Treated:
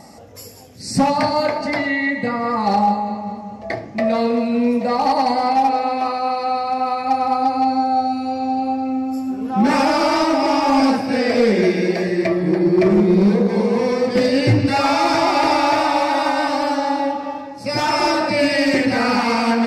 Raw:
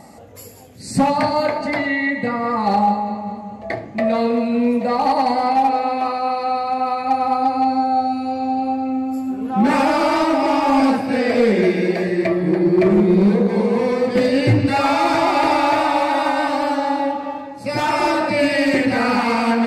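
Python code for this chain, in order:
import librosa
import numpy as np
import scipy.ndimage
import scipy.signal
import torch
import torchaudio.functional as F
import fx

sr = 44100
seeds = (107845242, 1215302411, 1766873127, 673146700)

y = fx.peak_eq(x, sr, hz=5400.0, db=11.0, octaves=0.32)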